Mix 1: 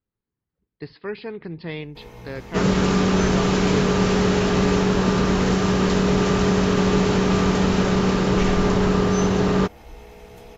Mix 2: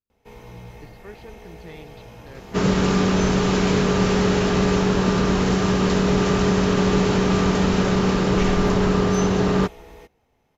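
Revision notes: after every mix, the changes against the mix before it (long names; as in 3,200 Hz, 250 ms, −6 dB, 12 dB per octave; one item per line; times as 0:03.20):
speech −11.0 dB
first sound: entry −1.70 s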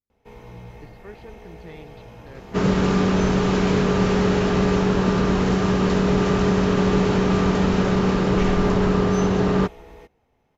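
master: add high-shelf EQ 3,900 Hz −7.5 dB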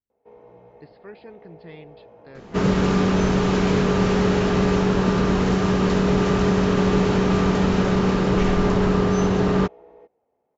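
first sound: add resonant band-pass 540 Hz, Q 1.6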